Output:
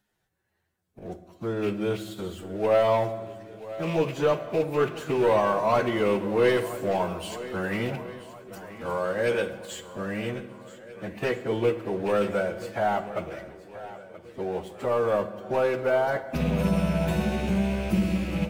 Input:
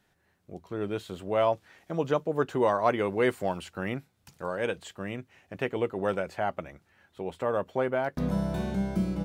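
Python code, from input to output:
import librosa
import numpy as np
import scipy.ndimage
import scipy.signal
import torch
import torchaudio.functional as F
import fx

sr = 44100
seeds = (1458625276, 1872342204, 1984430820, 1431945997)

y = fx.rattle_buzz(x, sr, strikes_db=-35.0, level_db=-30.0)
y = fx.high_shelf(y, sr, hz=7900.0, db=6.0)
y = fx.leveller(y, sr, passes=2)
y = fx.echo_swing(y, sr, ms=816, ratio=1.5, feedback_pct=36, wet_db=-16)
y = fx.stretch_vocoder_free(y, sr, factor=2.0)
y = fx.rev_fdn(y, sr, rt60_s=1.4, lf_ratio=1.2, hf_ratio=0.65, size_ms=27.0, drr_db=10.0)
y = y * 10.0 ** (-3.0 / 20.0)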